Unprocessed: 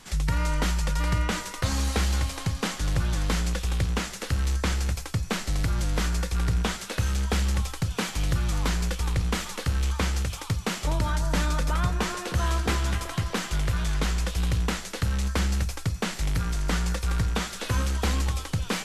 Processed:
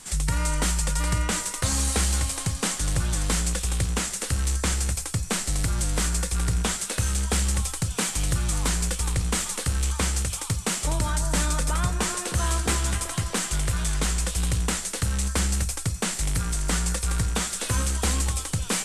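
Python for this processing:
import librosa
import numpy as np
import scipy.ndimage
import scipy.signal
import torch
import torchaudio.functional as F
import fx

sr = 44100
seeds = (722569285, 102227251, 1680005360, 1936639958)

y = fx.peak_eq(x, sr, hz=8700.0, db=15.0, octaves=0.78)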